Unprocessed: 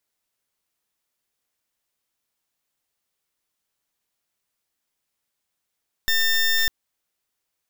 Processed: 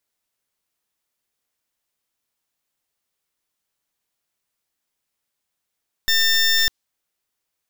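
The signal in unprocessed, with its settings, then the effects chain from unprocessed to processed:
pulse 1.8 kHz, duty 20% -19.5 dBFS 0.60 s
dynamic bell 4.8 kHz, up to +6 dB, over -36 dBFS, Q 0.83

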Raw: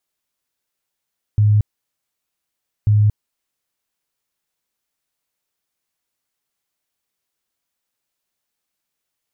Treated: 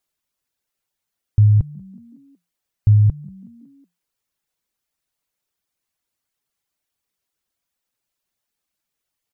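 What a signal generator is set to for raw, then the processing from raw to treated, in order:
tone bursts 105 Hz, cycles 24, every 1.49 s, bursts 2, -10 dBFS
reverb removal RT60 0.64 s; bass shelf 140 Hz +4.5 dB; frequency-shifting echo 185 ms, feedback 56%, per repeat +43 Hz, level -23.5 dB

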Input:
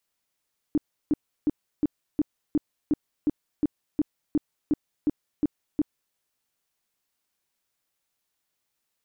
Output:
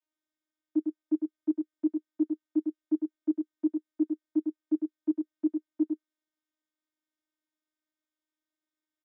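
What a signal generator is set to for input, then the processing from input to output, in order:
tone bursts 299 Hz, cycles 8, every 0.36 s, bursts 15, -18 dBFS
vocoder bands 16, saw 309 Hz; delay 103 ms -5 dB

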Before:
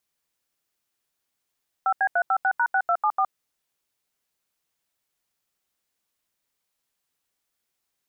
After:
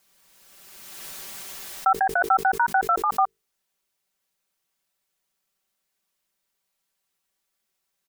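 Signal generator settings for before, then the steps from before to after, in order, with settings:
DTMF "5B356#6274", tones 66 ms, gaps 81 ms, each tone -21 dBFS
hum notches 50/100/150/200/250/300/350/400/450 Hz; comb 5.2 ms, depth 61%; swell ahead of each attack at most 26 dB/s

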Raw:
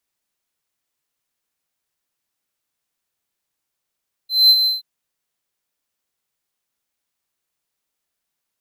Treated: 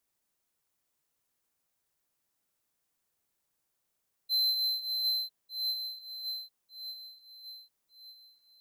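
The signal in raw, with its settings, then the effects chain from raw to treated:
ADSR triangle 4.08 kHz, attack 207 ms, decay 54 ms, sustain -7.5 dB, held 0.37 s, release 157 ms -4.5 dBFS
backward echo that repeats 599 ms, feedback 57%, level -11 dB; compression 10:1, threshold -22 dBFS; peaking EQ 3 kHz -5 dB 2.3 oct

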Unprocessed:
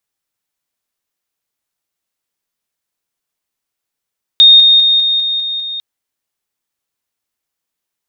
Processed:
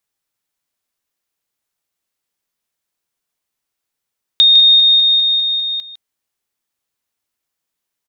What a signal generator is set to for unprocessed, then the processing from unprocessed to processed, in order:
level ladder 3.69 kHz -1.5 dBFS, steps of -3 dB, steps 7, 0.20 s 0.00 s
compression 2:1, threshold -11 dBFS; delay 155 ms -11.5 dB

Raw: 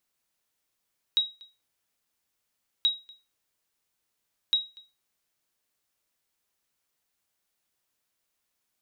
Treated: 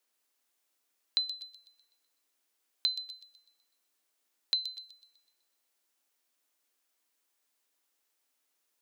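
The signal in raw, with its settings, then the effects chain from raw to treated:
sonar ping 3.82 kHz, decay 0.27 s, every 1.68 s, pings 3, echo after 0.24 s, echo -25.5 dB -15.5 dBFS
compression, threshold -26 dBFS; frequency shift +230 Hz; on a send: feedback echo behind a high-pass 125 ms, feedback 46%, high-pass 5.2 kHz, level -5.5 dB

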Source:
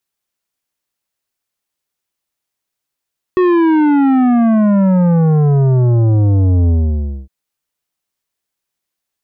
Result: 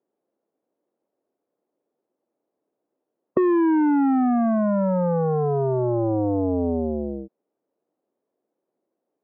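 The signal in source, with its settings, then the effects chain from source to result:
sub drop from 370 Hz, over 3.91 s, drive 11 dB, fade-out 0.59 s, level -9.5 dB
Butterworth band-pass 390 Hz, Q 1.1; spectrum-flattening compressor 2:1

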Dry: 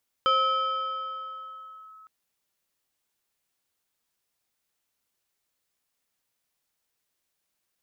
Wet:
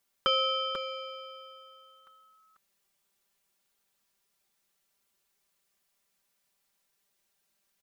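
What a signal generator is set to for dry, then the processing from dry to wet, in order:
FM tone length 1.81 s, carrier 1.29 kHz, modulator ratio 1.41, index 0.71, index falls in 1.68 s linear, decay 3.60 s, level -18 dB
comb 5.1 ms, depth 77%; on a send: delay 491 ms -6.5 dB

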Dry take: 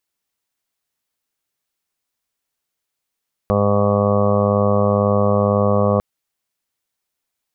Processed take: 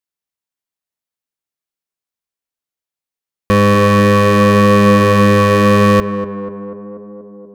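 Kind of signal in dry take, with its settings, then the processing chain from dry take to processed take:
steady additive tone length 2.50 s, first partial 102 Hz, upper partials 0/-15/-4.5/1/-2/-8.5/-12.5/-16/-13.5/-5/-15 dB, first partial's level -19.5 dB
waveshaping leveller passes 5; on a send: tape echo 242 ms, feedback 87%, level -7.5 dB, low-pass 1 kHz

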